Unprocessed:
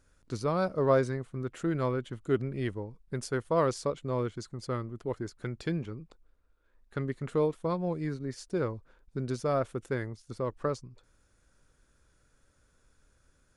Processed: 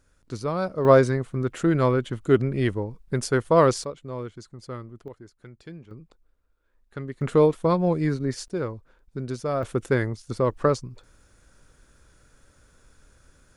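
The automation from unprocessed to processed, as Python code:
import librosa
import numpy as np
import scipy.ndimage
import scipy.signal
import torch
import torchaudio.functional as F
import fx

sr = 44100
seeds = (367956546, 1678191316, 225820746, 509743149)

y = fx.gain(x, sr, db=fx.steps((0.0, 2.0), (0.85, 9.0), (3.84, -2.5), (5.08, -9.5), (5.91, -1.0), (7.21, 9.5), (8.48, 2.0), (9.63, 10.0)))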